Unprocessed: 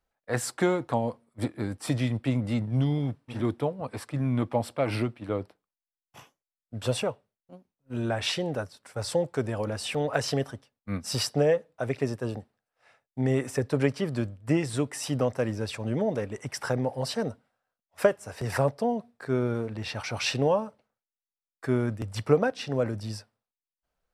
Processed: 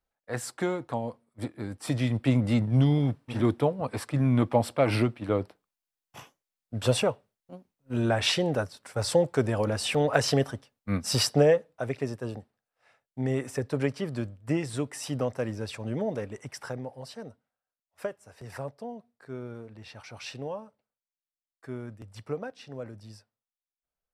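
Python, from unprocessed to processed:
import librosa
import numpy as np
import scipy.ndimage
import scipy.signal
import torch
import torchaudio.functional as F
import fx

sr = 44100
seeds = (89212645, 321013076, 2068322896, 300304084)

y = fx.gain(x, sr, db=fx.line((1.62, -4.5), (2.32, 3.5), (11.37, 3.5), (11.99, -3.0), (16.29, -3.0), (17.06, -12.0)))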